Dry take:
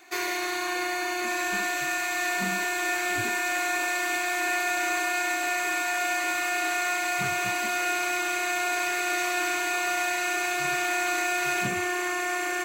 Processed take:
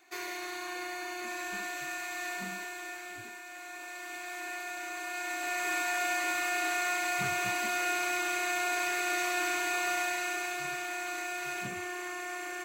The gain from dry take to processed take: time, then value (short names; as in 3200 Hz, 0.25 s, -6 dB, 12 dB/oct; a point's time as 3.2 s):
2.32 s -9.5 dB
3.46 s -19 dB
4.34 s -12.5 dB
4.93 s -12.5 dB
5.73 s -4 dB
9.93 s -4 dB
10.85 s -10 dB